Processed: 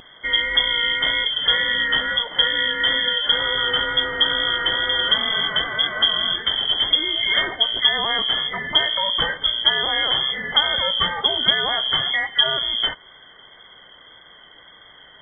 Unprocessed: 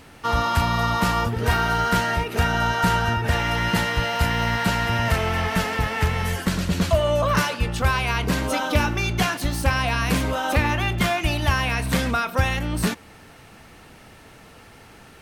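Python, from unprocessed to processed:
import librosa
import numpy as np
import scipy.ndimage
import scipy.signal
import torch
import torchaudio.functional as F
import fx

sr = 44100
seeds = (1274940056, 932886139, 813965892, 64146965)

y = fx.brickwall_bandstop(x, sr, low_hz=210.0, high_hz=1100.0)
y = fx.freq_invert(y, sr, carrier_hz=3300)
y = fx.wow_flutter(y, sr, seeds[0], rate_hz=2.1, depth_cents=21.0)
y = y * 10.0 ** (2.0 / 20.0)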